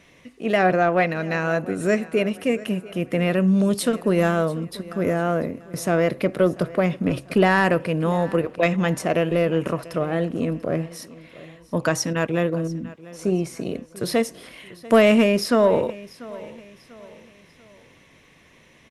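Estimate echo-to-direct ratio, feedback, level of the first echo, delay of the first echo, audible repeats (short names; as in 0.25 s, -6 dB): -19.0 dB, 39%, -19.5 dB, 0.691 s, 2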